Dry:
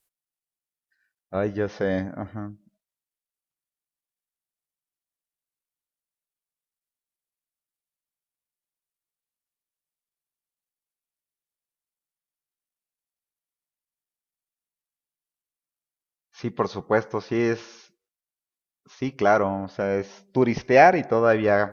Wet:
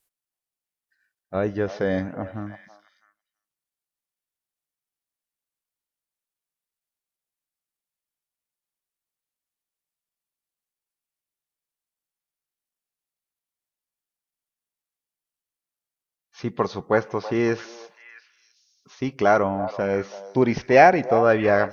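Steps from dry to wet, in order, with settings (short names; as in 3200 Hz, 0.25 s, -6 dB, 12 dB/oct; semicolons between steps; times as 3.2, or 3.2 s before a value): delay with a stepping band-pass 0.328 s, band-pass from 790 Hz, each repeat 1.4 oct, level -10 dB; gain +1 dB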